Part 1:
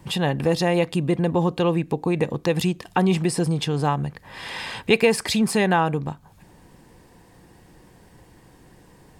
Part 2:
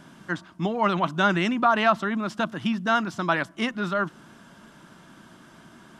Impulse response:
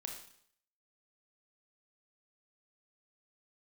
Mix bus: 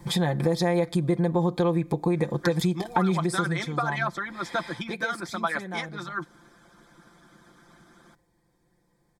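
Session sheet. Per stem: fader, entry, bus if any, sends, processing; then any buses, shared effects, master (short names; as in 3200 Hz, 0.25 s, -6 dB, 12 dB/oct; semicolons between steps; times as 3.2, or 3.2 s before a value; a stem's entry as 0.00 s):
3.04 s -0.5 dB -> 3.64 s -11.5 dB -> 4.72 s -11.5 dB -> 5.1 s -20 dB, 0.00 s, send -20 dB, dry
-1.5 dB, 2.15 s, send -23.5 dB, harmonic-percussive split harmonic -16 dB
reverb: on, RT60 0.65 s, pre-delay 25 ms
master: Butterworth band-stop 2800 Hz, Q 4.5; comb 5.8 ms, depth 65%; compressor 3:1, threshold -22 dBFS, peak gain reduction 8.5 dB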